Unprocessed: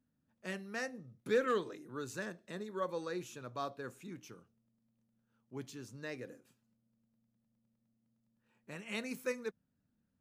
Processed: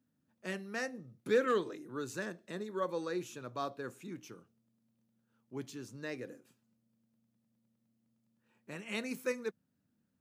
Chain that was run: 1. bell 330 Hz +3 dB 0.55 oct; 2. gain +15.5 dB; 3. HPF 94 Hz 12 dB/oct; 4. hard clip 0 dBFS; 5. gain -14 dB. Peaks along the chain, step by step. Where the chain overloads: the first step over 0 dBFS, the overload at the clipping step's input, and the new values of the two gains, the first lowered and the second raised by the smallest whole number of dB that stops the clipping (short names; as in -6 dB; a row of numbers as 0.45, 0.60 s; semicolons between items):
-22.0, -6.5, -5.5, -5.5, -19.5 dBFS; no overload